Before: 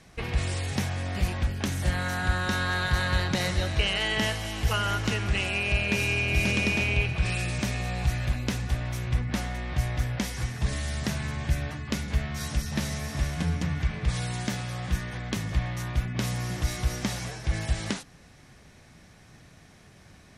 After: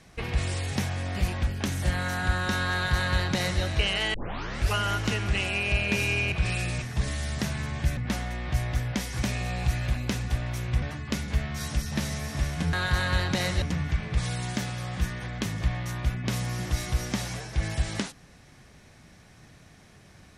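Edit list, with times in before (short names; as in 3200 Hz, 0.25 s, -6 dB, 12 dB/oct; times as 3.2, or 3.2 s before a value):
2.73–3.62 copy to 13.53
4.14 tape start 0.61 s
6.32–7.12 cut
7.62–9.21 swap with 10.47–11.62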